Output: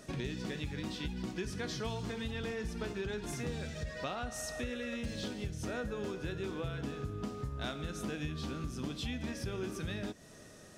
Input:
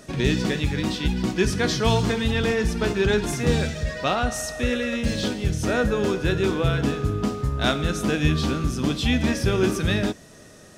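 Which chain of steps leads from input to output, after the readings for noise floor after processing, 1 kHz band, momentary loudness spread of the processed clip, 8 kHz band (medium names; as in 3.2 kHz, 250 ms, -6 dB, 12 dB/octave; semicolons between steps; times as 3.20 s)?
-54 dBFS, -16.0 dB, 2 LU, -13.5 dB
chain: compression 5:1, threshold -29 dBFS, peak gain reduction 13.5 dB; trim -7 dB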